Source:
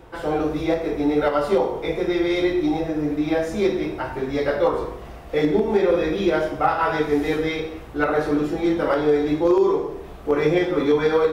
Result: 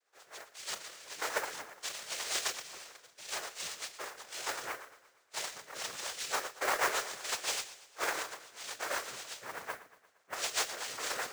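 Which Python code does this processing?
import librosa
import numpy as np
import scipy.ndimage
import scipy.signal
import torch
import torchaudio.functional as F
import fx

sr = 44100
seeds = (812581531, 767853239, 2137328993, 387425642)

p1 = scipy.signal.sosfilt(scipy.signal.butter(2, 3900.0, 'lowpass', fs=sr, output='sos'), x)
p2 = fx.noise_reduce_blind(p1, sr, reduce_db=18)
p3 = scipy.signal.sosfilt(scipy.signal.butter(4, 1300.0, 'highpass', fs=sr, output='sos'), p2)
p4 = np.clip(p3, -10.0 ** (-23.0 / 20.0), 10.0 ** (-23.0 / 20.0))
p5 = fx.noise_vocoder(p4, sr, seeds[0], bands=3)
p6 = fx.rotary(p5, sr, hz=8.0)
p7 = fx.mod_noise(p6, sr, seeds[1], snr_db=12)
y = p7 + fx.echo_feedback(p7, sr, ms=116, feedback_pct=56, wet_db=-17, dry=0)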